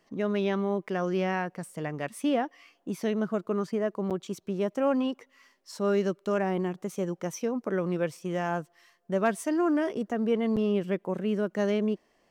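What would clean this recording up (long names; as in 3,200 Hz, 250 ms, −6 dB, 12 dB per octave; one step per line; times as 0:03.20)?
clipped peaks rebuilt −15 dBFS
repair the gap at 0:04.10/0:10.56, 7.5 ms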